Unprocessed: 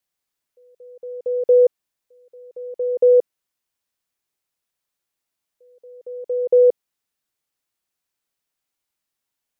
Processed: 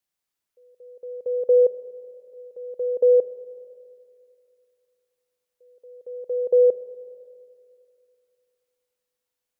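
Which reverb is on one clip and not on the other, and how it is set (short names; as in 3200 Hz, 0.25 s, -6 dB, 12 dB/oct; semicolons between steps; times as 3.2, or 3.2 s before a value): Schroeder reverb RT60 2.6 s, combs from 26 ms, DRR 12.5 dB; gain -3 dB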